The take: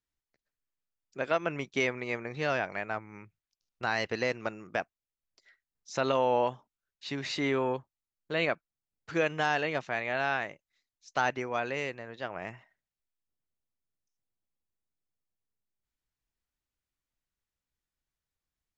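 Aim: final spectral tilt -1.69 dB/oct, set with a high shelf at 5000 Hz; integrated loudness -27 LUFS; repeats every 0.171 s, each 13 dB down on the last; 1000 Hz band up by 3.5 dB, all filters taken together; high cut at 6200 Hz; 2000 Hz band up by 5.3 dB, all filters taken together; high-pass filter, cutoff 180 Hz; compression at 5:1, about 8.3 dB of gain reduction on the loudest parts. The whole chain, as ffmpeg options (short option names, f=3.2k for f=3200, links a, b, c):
-af "highpass=180,lowpass=6.2k,equalizer=f=1k:t=o:g=3.5,equalizer=f=2k:t=o:g=6.5,highshelf=f=5k:g=-6,acompressor=threshold=-29dB:ratio=5,aecho=1:1:171|342|513:0.224|0.0493|0.0108,volume=7.5dB"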